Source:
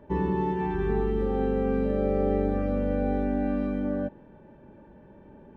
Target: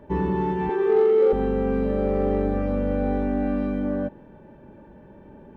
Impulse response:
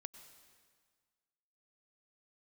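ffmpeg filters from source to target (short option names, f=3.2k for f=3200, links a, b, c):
-filter_complex "[0:a]asettb=1/sr,asplit=3[a][b][c];[a]atrim=end=0.694[d];[b]atrim=start=0.69:end=1.33,asetpts=PTS-STARTPTS,afade=t=in:d=0.004:c=qsin,afade=t=out:st=0.636:d=0.004:c=qsin,highpass=f=470:t=q:w=4.9[e];[c]atrim=start=1.326[f];[d][e]acrossfade=d=0.004:c1=hsin:c2=qsin[g];[g][f]acrossfade=d=0.004:c1=qsin:c2=hsin,asplit=2[h][i];[i]asoftclip=type=tanh:threshold=-26dB,volume=-5dB[j];[h][j]amix=inputs=2:normalize=0"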